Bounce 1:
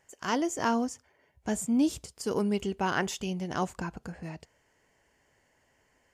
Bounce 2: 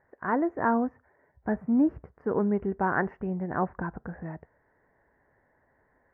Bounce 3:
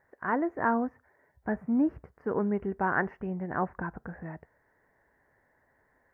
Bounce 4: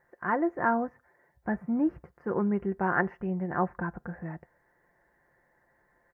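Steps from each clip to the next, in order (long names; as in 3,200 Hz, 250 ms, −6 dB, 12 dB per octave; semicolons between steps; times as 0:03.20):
elliptic low-pass filter 1,800 Hz, stop band 50 dB; level +3 dB
high-shelf EQ 2,000 Hz +9 dB; level −3 dB
comb filter 5.7 ms, depth 46%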